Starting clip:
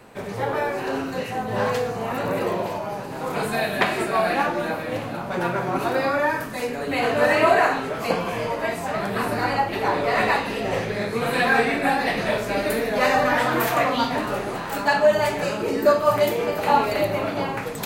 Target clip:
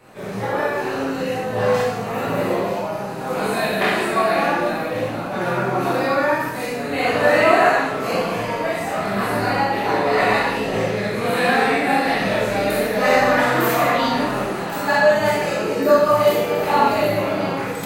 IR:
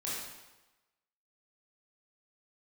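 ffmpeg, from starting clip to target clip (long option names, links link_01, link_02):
-filter_complex "[1:a]atrim=start_sample=2205,afade=type=out:start_time=0.32:duration=0.01,atrim=end_sample=14553,asetrate=48510,aresample=44100[link_01];[0:a][link_01]afir=irnorm=-1:irlink=0,volume=1dB"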